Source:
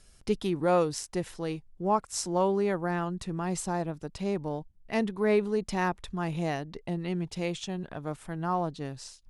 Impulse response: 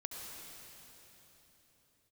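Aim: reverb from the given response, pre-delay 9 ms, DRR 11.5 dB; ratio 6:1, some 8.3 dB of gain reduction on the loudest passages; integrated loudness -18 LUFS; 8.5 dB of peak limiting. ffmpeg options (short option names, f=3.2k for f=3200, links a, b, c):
-filter_complex "[0:a]acompressor=threshold=-29dB:ratio=6,alimiter=level_in=2dB:limit=-24dB:level=0:latency=1,volume=-2dB,asplit=2[a][b];[1:a]atrim=start_sample=2205,adelay=9[c];[b][c]afir=irnorm=-1:irlink=0,volume=-10.5dB[d];[a][d]amix=inputs=2:normalize=0,volume=19dB"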